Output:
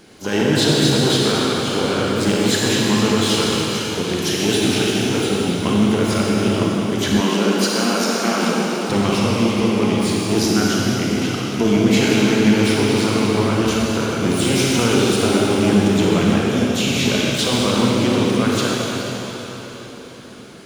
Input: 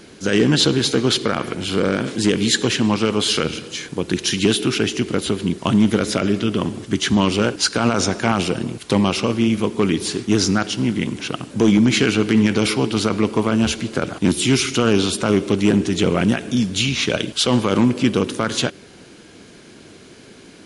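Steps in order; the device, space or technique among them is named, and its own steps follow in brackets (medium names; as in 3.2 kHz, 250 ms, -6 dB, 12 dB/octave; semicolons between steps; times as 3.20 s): shimmer-style reverb (harmony voices +12 st -12 dB; reverberation RT60 4.6 s, pre-delay 30 ms, DRR -4.5 dB); 7.20–8.90 s: elliptic high-pass 170 Hz, stop band 40 dB; trim -4.5 dB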